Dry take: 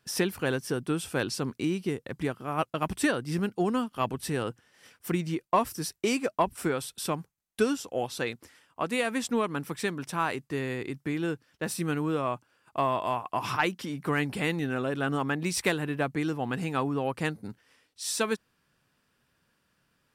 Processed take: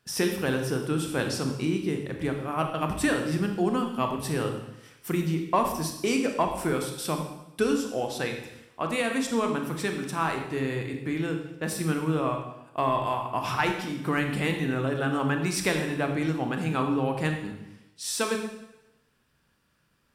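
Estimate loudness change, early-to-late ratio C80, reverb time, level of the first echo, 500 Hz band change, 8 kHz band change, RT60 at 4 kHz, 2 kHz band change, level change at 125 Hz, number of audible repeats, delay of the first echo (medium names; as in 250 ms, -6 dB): +2.0 dB, 8.0 dB, 0.90 s, no echo, +2.0 dB, +1.5 dB, 0.90 s, +1.5 dB, +3.5 dB, no echo, no echo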